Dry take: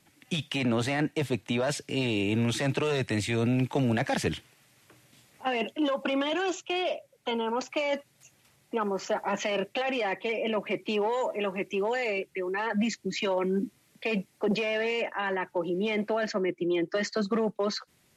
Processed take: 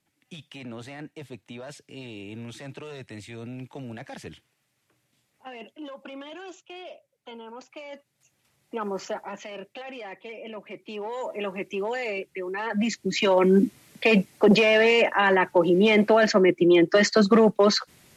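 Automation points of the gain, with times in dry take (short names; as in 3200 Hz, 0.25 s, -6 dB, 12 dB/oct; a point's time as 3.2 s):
7.97 s -12 dB
8.99 s +0.5 dB
9.4 s -9.5 dB
10.82 s -9.5 dB
11.39 s -0.5 dB
12.58 s -0.5 dB
13.53 s +10 dB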